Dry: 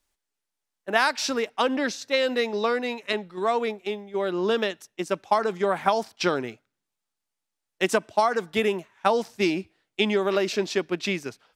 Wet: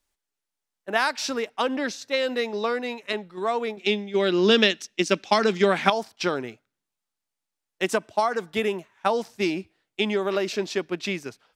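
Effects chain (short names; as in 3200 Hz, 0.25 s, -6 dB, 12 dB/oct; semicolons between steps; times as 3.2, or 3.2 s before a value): 3.77–5.9 EQ curve 130 Hz 0 dB, 210 Hz +11 dB, 940 Hz 0 dB, 2500 Hz +13 dB, 5500 Hz +14 dB, 11000 Hz 0 dB; gain -1.5 dB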